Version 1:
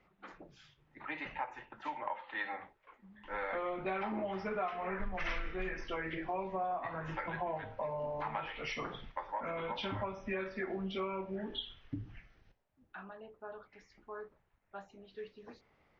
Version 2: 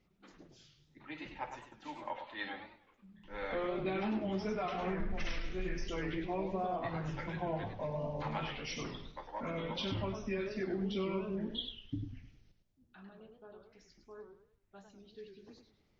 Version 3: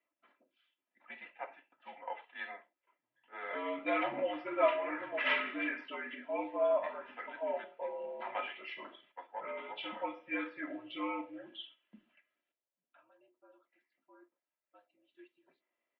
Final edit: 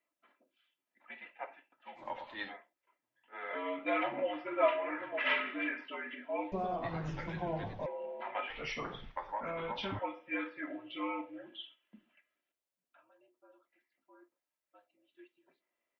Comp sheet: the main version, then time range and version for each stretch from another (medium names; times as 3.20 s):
3
2.02–2.50 s: from 2, crossfade 0.16 s
6.52–7.86 s: from 2
8.50–9.99 s: from 1